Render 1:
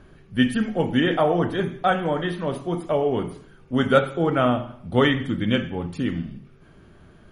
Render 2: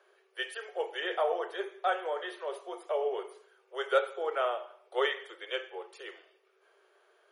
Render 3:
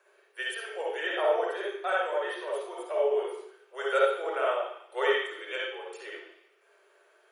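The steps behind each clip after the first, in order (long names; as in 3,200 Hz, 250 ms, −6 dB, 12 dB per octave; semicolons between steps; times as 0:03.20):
Butterworth high-pass 380 Hz 96 dB per octave; level −8.5 dB
convolution reverb RT60 0.65 s, pre-delay 51 ms, DRR −2 dB; level +2.5 dB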